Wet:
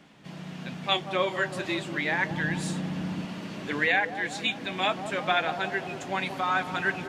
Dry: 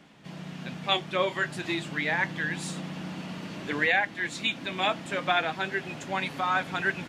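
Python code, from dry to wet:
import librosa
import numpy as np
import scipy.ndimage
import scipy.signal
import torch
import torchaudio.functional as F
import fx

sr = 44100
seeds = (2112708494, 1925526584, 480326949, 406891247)

y = fx.low_shelf(x, sr, hz=180.0, db=10.5, at=(2.31, 3.25))
y = fx.echo_wet_bandpass(y, sr, ms=183, feedback_pct=65, hz=480.0, wet_db=-8)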